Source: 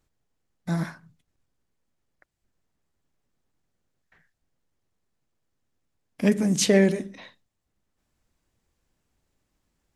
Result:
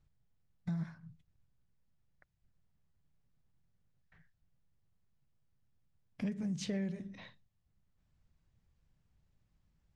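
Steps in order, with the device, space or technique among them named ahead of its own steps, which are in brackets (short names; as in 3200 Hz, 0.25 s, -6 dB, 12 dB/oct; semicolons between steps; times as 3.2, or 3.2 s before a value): jukebox (LPF 5600 Hz 12 dB/oct; resonant low shelf 210 Hz +9.5 dB, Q 1.5; compressor 4:1, threshold -30 dBFS, peak gain reduction 16 dB); gain -7 dB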